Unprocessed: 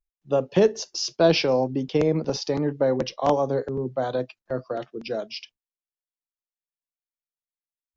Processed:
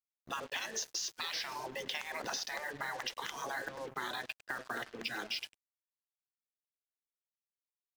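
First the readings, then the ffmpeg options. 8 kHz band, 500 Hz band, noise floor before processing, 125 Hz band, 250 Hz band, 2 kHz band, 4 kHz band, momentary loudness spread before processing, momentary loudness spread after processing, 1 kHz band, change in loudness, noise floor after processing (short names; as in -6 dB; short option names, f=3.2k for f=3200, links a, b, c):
n/a, -24.5 dB, under -85 dBFS, -28.0 dB, -25.0 dB, -2.0 dB, -7.0 dB, 12 LU, 5 LU, -11.0 dB, -14.5 dB, under -85 dBFS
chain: -filter_complex "[0:a]tremolo=f=0.94:d=0.31,superequalizer=11b=2.82:14b=0.562,afftfilt=real='re*lt(hypot(re,im),0.0891)':imag='im*lt(hypot(re,im),0.0891)':win_size=1024:overlap=0.75,alimiter=level_in=1.5dB:limit=-24dB:level=0:latency=1:release=151,volume=-1.5dB,highpass=f=590:p=1,highshelf=f=5.8k:g=7,acompressor=threshold=-42dB:ratio=10,asplit=2[a][b];[b]adelay=102,lowpass=f=3.9k:p=1,volume=-17.5dB,asplit=2[c][d];[d]adelay=102,lowpass=f=3.9k:p=1,volume=0.46,asplit=2[e][f];[f]adelay=102,lowpass=f=3.9k:p=1,volume=0.46,asplit=2[g][h];[h]adelay=102,lowpass=f=3.9k:p=1,volume=0.46[i];[a][c][e][g][i]amix=inputs=5:normalize=0,acrusher=bits=8:mix=0:aa=0.5,volume=7dB"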